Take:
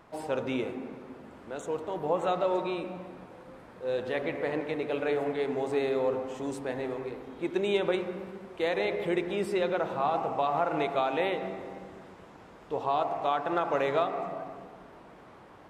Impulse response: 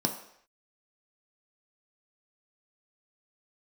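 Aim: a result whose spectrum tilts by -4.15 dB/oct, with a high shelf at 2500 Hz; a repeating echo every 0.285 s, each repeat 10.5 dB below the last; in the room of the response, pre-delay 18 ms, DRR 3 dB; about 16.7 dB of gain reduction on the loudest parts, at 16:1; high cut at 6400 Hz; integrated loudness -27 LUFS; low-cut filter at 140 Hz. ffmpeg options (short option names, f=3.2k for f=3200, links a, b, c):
-filter_complex "[0:a]highpass=140,lowpass=6.4k,highshelf=f=2.5k:g=-5,acompressor=threshold=-40dB:ratio=16,aecho=1:1:285|570|855:0.299|0.0896|0.0269,asplit=2[a][b];[1:a]atrim=start_sample=2205,adelay=18[c];[b][c]afir=irnorm=-1:irlink=0,volume=-10dB[d];[a][d]amix=inputs=2:normalize=0,volume=14dB"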